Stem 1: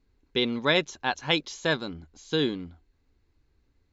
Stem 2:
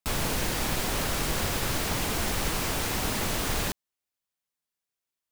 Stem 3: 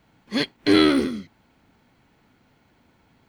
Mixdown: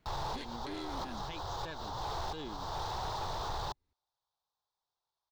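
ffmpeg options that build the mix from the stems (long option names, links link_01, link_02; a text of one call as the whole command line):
ffmpeg -i stem1.wav -i stem2.wav -i stem3.wav -filter_complex "[0:a]alimiter=limit=-16.5dB:level=0:latency=1:release=184,volume=-7.5dB,asplit=2[link_01][link_02];[1:a]firequalizer=gain_entry='entry(130,0);entry(230,-20);entry(360,-3);entry(580,0);entry(850,11);entry(2300,-23);entry(3600,2);entry(5600,-5);entry(9900,-29);entry(15000,-18)':delay=0.05:min_phase=1,volume=2.5dB[link_03];[2:a]volume=-7dB[link_04];[link_02]apad=whole_len=238731[link_05];[link_03][link_05]sidechaincompress=threshold=-50dB:ratio=6:attack=16:release=175[link_06];[link_01][link_04]amix=inputs=2:normalize=0,aeval=exprs='(tanh(10*val(0)+0.7)-tanh(0.7))/10':channel_layout=same,acompressor=threshold=-32dB:ratio=6,volume=0dB[link_07];[link_06][link_07]amix=inputs=2:normalize=0,asoftclip=type=tanh:threshold=-22dB,alimiter=level_in=7.5dB:limit=-24dB:level=0:latency=1:release=178,volume=-7.5dB" out.wav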